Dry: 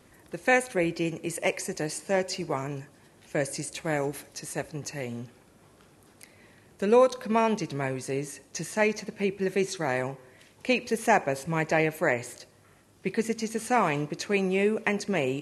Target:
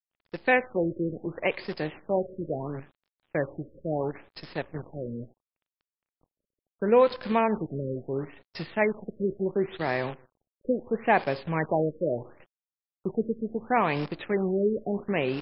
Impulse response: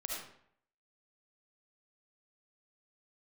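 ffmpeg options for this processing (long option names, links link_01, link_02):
-af "agate=range=-13dB:threshold=-46dB:ratio=16:detection=peak,acrusher=bits=7:dc=4:mix=0:aa=0.000001,afftfilt=real='re*lt(b*sr/1024,580*pow(5500/580,0.5+0.5*sin(2*PI*0.73*pts/sr)))':imag='im*lt(b*sr/1024,580*pow(5500/580,0.5+0.5*sin(2*PI*0.73*pts/sr)))':win_size=1024:overlap=0.75"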